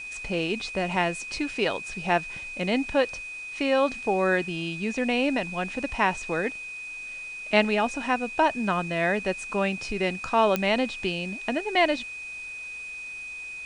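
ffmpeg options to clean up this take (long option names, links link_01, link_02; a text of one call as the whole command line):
ffmpeg -i in.wav -af "adeclick=threshold=4,bandreject=frequency=2500:width=30,afwtdn=0.0032" out.wav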